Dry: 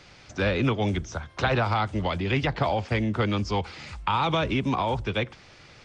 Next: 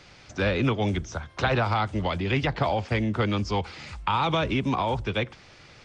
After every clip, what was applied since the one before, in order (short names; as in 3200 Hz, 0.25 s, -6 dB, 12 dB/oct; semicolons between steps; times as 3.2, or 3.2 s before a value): nothing audible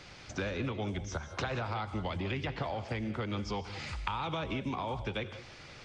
compressor 6:1, threshold -33 dBFS, peak gain reduction 13 dB; non-linear reverb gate 0.21 s rising, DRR 10.5 dB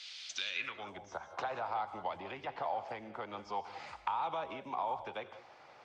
pre-emphasis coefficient 0.8; band-pass sweep 3500 Hz -> 810 Hz, 0.46–0.98; mismatched tape noise reduction decoder only; gain +17 dB